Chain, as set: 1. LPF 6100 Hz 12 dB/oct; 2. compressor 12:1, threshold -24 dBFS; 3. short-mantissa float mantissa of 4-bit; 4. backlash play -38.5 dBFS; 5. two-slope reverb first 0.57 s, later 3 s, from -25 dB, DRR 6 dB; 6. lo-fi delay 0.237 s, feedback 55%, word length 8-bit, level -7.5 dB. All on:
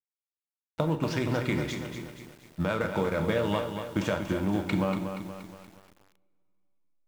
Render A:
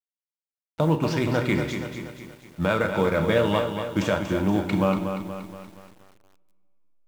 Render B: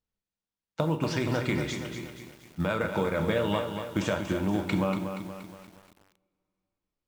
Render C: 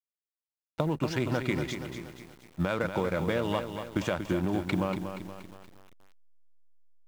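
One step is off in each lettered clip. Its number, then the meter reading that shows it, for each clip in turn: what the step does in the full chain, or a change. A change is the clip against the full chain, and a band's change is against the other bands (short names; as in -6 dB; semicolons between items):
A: 2, mean gain reduction 4.0 dB; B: 4, distortion -16 dB; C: 5, loudness change -1.5 LU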